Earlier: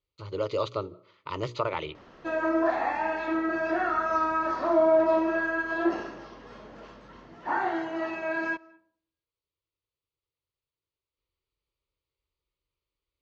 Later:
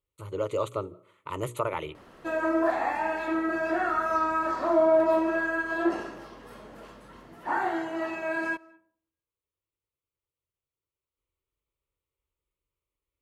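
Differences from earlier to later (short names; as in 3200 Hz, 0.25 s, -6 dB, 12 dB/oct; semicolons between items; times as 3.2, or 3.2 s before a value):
speech: remove synth low-pass 4900 Hz, resonance Q 8.1; master: remove steep low-pass 6400 Hz 48 dB/oct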